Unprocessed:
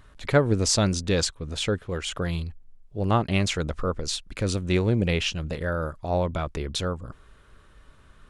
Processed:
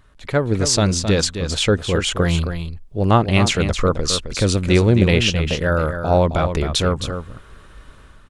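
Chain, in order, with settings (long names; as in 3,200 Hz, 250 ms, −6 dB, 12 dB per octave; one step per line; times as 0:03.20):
automatic gain control gain up to 11 dB
on a send: single-tap delay 265 ms −8.5 dB
on the sum: level −1 dB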